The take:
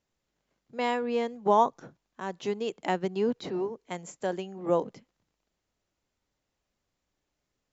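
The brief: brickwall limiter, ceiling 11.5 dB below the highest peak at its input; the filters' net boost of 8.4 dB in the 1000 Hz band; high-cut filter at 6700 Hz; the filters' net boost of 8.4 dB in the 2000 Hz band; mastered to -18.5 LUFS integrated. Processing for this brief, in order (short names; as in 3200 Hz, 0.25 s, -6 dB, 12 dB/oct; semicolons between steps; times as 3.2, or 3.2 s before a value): LPF 6700 Hz; bell 1000 Hz +8.5 dB; bell 2000 Hz +7.5 dB; gain +11.5 dB; limiter -4.5 dBFS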